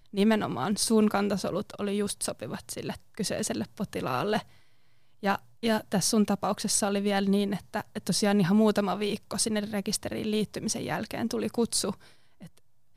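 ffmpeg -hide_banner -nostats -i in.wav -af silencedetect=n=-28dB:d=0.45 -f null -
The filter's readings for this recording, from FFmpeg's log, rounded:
silence_start: 4.39
silence_end: 5.24 | silence_duration: 0.85
silence_start: 11.91
silence_end: 12.97 | silence_duration: 1.06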